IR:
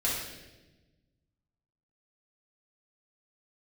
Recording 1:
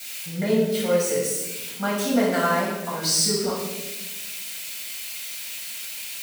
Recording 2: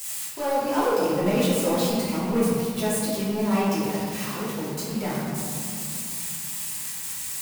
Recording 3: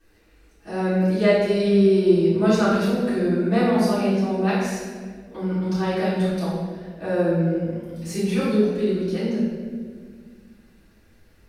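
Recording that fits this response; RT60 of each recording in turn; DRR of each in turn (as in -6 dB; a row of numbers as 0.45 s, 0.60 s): 1; 1.1 s, 2.5 s, 1.8 s; -7.0 dB, -11.5 dB, -14.0 dB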